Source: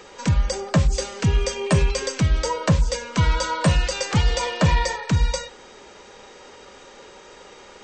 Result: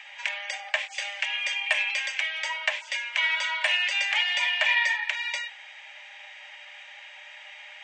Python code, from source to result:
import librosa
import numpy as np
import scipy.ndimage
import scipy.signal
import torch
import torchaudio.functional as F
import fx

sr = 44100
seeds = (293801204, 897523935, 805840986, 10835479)

y = scipy.signal.sosfilt(scipy.signal.cheby1(6, 9, 580.0, 'highpass', fs=sr, output='sos'), x)
y = fx.band_shelf(y, sr, hz=2400.0, db=12.0, octaves=1.3)
y = y * 10.0 ** (-2.5 / 20.0)